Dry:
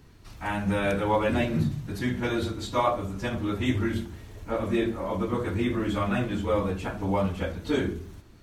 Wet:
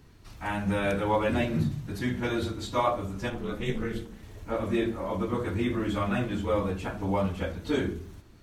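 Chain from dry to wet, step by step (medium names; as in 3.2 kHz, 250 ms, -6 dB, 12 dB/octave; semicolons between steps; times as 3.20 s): 3.30–4.23 s: ring modulator 120 Hz; trim -1.5 dB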